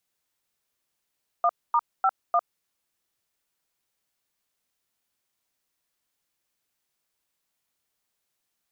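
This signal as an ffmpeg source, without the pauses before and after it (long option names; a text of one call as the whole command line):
ffmpeg -f lavfi -i "aevalsrc='0.0944*clip(min(mod(t,0.3),0.053-mod(t,0.3))/0.002,0,1)*(eq(floor(t/0.3),0)*(sin(2*PI*697*mod(t,0.3))+sin(2*PI*1209*mod(t,0.3)))+eq(floor(t/0.3),1)*(sin(2*PI*941*mod(t,0.3))+sin(2*PI*1209*mod(t,0.3)))+eq(floor(t/0.3),2)*(sin(2*PI*770*mod(t,0.3))+sin(2*PI*1336*mod(t,0.3)))+eq(floor(t/0.3),3)*(sin(2*PI*697*mod(t,0.3))+sin(2*PI*1209*mod(t,0.3))))':duration=1.2:sample_rate=44100" out.wav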